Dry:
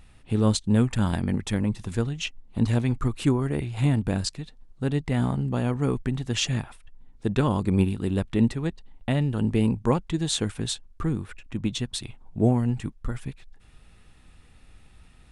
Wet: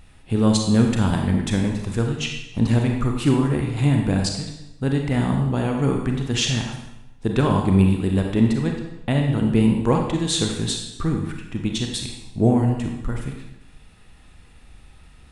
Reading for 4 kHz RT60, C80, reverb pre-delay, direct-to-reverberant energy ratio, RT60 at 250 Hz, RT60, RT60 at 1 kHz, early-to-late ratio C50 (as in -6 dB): 0.85 s, 6.5 dB, 31 ms, 2.0 dB, 0.95 s, 0.90 s, 0.90 s, 4.0 dB